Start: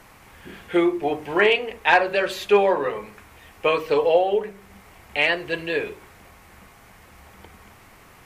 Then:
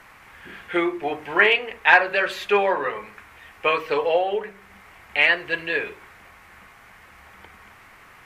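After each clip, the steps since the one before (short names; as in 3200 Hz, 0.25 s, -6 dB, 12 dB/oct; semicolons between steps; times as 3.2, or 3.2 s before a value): bell 1700 Hz +10.5 dB 2 oct; gain -5.5 dB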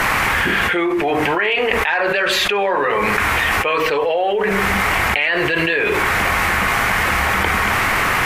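fast leveller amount 100%; gain -7 dB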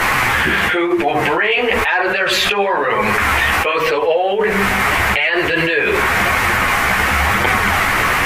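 chorus voices 2, 1 Hz, delay 12 ms, depth 4.1 ms; gain +5 dB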